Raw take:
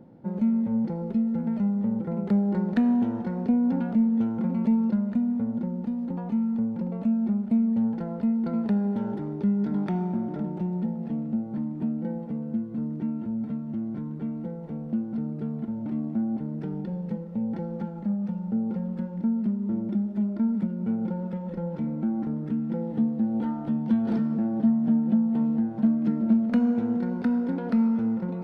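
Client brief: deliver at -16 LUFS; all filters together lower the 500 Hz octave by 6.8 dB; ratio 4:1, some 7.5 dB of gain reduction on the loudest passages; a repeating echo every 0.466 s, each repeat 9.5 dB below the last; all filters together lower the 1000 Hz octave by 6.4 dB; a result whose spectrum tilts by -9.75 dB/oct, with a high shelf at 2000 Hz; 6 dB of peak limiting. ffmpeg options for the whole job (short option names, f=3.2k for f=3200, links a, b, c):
-af "equalizer=f=500:t=o:g=-7.5,equalizer=f=1k:t=o:g=-4,highshelf=f=2k:g=-6,acompressor=threshold=-28dB:ratio=4,alimiter=level_in=2dB:limit=-24dB:level=0:latency=1,volume=-2dB,aecho=1:1:466|932|1398|1864:0.335|0.111|0.0365|0.012,volume=16.5dB"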